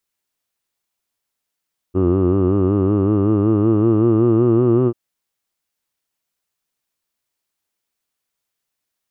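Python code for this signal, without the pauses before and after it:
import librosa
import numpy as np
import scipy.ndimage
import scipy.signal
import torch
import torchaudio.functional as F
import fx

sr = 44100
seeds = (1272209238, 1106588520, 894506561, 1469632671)

y = fx.formant_vowel(sr, seeds[0], length_s=2.99, hz=89.8, glide_st=5.5, vibrato_hz=5.3, vibrato_st=0.9, f1_hz=350.0, f2_hz=1200.0, f3_hz=2800.0)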